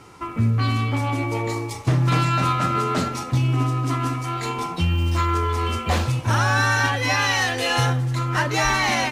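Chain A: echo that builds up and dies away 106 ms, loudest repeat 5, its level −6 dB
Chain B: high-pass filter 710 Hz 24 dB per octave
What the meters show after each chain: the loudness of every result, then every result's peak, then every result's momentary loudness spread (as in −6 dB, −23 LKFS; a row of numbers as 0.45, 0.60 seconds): −14.5, −24.5 LKFS; −1.5, −9.5 dBFS; 8, 12 LU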